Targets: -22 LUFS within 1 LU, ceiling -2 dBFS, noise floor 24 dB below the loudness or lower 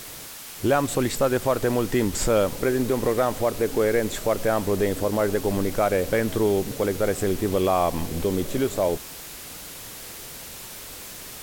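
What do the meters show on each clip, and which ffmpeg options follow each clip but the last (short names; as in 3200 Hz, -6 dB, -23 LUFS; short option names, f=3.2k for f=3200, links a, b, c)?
noise floor -39 dBFS; noise floor target -48 dBFS; loudness -24.0 LUFS; peak -9.5 dBFS; loudness target -22.0 LUFS
-> -af "afftdn=nr=9:nf=-39"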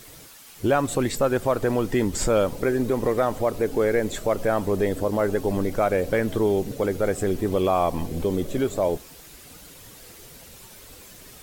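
noise floor -46 dBFS; noise floor target -48 dBFS
-> -af "afftdn=nr=6:nf=-46"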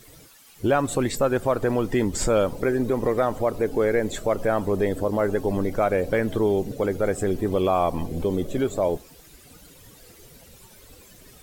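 noise floor -50 dBFS; loudness -24.0 LUFS; peak -10.0 dBFS; loudness target -22.0 LUFS
-> -af "volume=2dB"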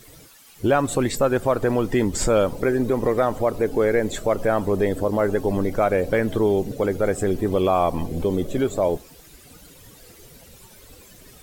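loudness -22.0 LUFS; peak -8.0 dBFS; noise floor -48 dBFS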